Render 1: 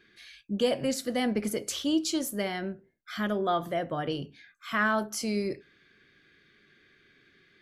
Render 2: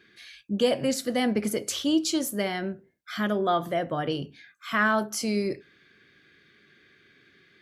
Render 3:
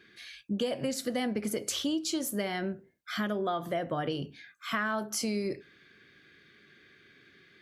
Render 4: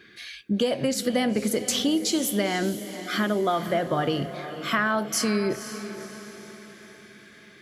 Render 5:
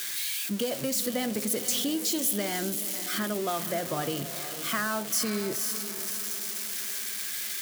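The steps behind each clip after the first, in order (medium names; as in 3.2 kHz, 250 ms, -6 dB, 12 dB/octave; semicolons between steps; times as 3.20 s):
high-pass 62 Hz; trim +3 dB
compression 6:1, threshold -28 dBFS, peak gain reduction 10.5 dB
echo that smears into a reverb 499 ms, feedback 48%, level -11.5 dB; trim +7 dB
zero-crossing glitches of -17 dBFS; trim -6.5 dB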